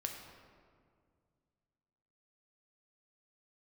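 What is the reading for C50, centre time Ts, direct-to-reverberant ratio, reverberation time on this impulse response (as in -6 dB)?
4.5 dB, 51 ms, 2.0 dB, 2.1 s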